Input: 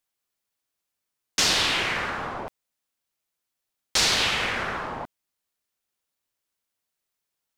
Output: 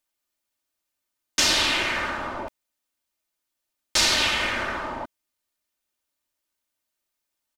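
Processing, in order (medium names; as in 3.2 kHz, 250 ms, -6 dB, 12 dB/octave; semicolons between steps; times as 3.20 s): comb 3.3 ms, depth 53%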